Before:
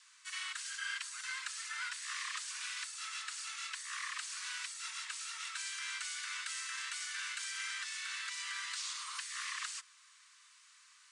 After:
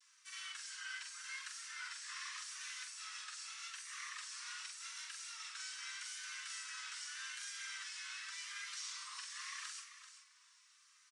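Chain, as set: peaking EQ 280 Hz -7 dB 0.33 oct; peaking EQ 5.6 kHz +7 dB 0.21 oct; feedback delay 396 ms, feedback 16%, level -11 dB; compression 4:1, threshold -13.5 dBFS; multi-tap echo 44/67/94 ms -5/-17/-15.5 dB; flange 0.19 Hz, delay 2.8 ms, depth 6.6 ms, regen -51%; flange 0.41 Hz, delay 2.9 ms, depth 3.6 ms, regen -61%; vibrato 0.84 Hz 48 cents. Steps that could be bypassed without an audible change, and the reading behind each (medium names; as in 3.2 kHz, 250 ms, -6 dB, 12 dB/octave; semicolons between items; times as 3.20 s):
peaking EQ 280 Hz: input has nothing below 850 Hz; compression, threshold -13.5 dBFS: peak at its input -24.5 dBFS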